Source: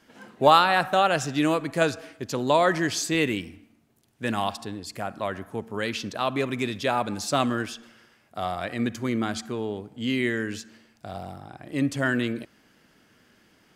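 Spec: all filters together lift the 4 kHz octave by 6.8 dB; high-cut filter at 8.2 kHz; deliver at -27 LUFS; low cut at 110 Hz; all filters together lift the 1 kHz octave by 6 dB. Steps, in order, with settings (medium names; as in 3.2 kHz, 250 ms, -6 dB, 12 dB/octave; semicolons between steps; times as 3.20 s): high-pass 110 Hz; low-pass 8.2 kHz; peaking EQ 1 kHz +7.5 dB; peaking EQ 4 kHz +8 dB; trim -5.5 dB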